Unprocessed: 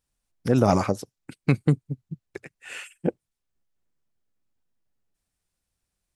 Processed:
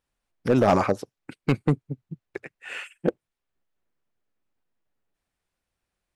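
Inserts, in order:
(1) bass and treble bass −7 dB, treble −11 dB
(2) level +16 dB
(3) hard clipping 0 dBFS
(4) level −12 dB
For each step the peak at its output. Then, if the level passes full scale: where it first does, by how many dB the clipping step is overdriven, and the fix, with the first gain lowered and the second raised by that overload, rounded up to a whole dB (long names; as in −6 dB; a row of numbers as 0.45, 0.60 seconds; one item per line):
−7.5, +8.5, 0.0, −12.0 dBFS
step 2, 8.5 dB
step 2 +7 dB, step 4 −3 dB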